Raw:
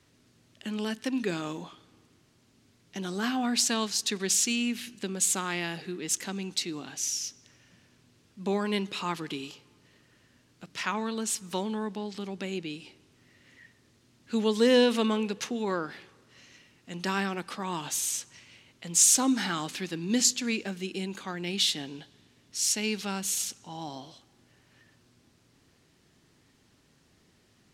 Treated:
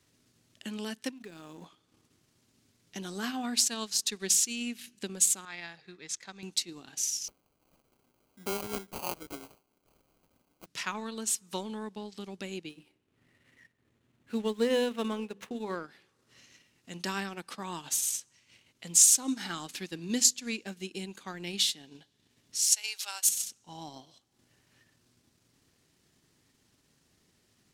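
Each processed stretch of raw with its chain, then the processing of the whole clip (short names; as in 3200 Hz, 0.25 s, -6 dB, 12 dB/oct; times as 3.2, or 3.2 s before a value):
1.11–1.66 compressor 5:1, threshold -36 dBFS + backlash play -48 dBFS
5.45–6.43 LPF 4400 Hz + bell 270 Hz -11.5 dB 1.8 oct + notch 2900 Hz, Q 5.5
7.28–10.66 HPF 270 Hz + sample-rate reducer 1800 Hz
12.69–15.76 median filter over 9 samples + high shelf 9300 Hz -9 dB + notches 50/100/150/200/250/300/350/400 Hz
22.72–23.29 HPF 700 Hz 24 dB/oct + high shelf 3700 Hz +9 dB
whole clip: high shelf 5500 Hz +8.5 dB; transient shaper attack +3 dB, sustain -9 dB; gain -6 dB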